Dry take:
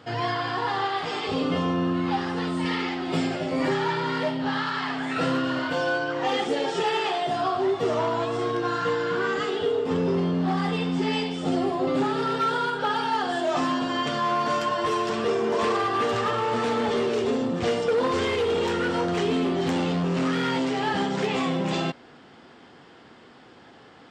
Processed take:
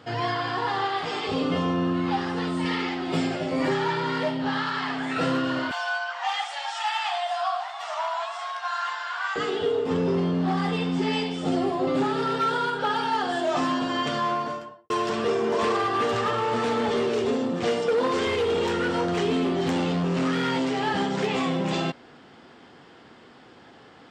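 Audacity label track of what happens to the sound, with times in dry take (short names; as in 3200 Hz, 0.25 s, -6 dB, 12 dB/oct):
5.710000	9.360000	steep high-pass 670 Hz 72 dB/oct
14.160000	14.900000	studio fade out
17.340000	18.260000	HPF 140 Hz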